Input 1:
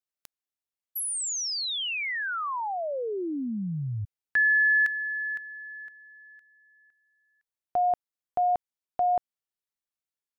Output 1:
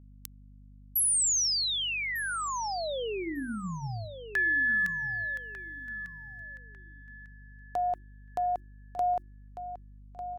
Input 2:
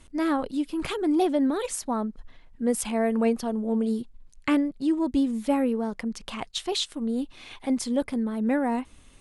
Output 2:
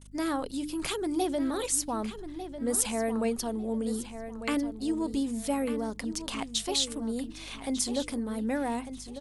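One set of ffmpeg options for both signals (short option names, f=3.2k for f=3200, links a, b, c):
-filter_complex "[0:a]agate=range=-33dB:threshold=-50dB:ratio=3:release=28:detection=rms,bass=f=250:g=-3,treble=f=4k:g=11,bandreject=f=50:t=h:w=6,bandreject=f=100:t=h:w=6,bandreject=f=150:t=h:w=6,bandreject=f=200:t=h:w=6,bandreject=f=250:t=h:w=6,bandreject=f=300:t=h:w=6,bandreject=f=350:t=h:w=6,asplit=2[a][b];[b]acompressor=threshold=-32dB:ratio=6:attack=15:release=23:knee=1,volume=0.5dB[c];[a][c]amix=inputs=2:normalize=0,aeval=exprs='val(0)+0.00708*(sin(2*PI*50*n/s)+sin(2*PI*2*50*n/s)/2+sin(2*PI*3*50*n/s)/3+sin(2*PI*4*50*n/s)/4+sin(2*PI*5*50*n/s)/5)':c=same,aeval=exprs='0.944*(cos(1*acos(clip(val(0)/0.944,-1,1)))-cos(1*PI/2))+0.00531*(cos(6*acos(clip(val(0)/0.944,-1,1)))-cos(6*PI/2))':c=same,asplit=2[d][e];[e]adelay=1198,lowpass=f=4.8k:p=1,volume=-10.5dB,asplit=2[f][g];[g]adelay=1198,lowpass=f=4.8k:p=1,volume=0.27,asplit=2[h][i];[i]adelay=1198,lowpass=f=4.8k:p=1,volume=0.27[j];[f][h][j]amix=inputs=3:normalize=0[k];[d][k]amix=inputs=2:normalize=0,volume=-8dB"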